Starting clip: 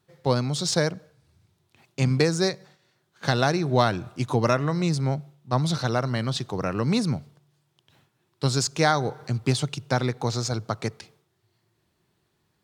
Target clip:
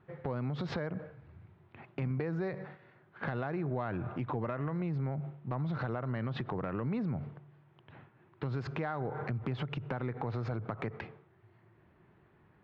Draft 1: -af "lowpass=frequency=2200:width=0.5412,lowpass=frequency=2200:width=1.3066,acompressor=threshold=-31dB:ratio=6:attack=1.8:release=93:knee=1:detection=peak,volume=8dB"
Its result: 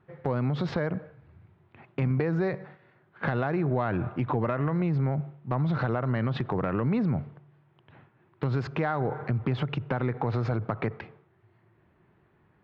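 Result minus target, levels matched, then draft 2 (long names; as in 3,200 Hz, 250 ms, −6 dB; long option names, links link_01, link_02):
downward compressor: peak gain reduction −8 dB
-af "lowpass=frequency=2200:width=0.5412,lowpass=frequency=2200:width=1.3066,acompressor=threshold=-40.5dB:ratio=6:attack=1.8:release=93:knee=1:detection=peak,volume=8dB"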